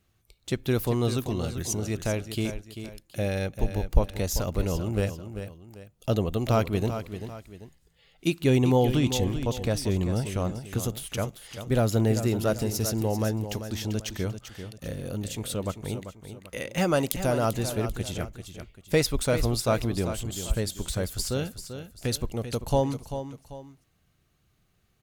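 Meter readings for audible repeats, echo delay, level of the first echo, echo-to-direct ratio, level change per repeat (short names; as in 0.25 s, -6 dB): 2, 0.391 s, -10.0 dB, -9.5 dB, -8.5 dB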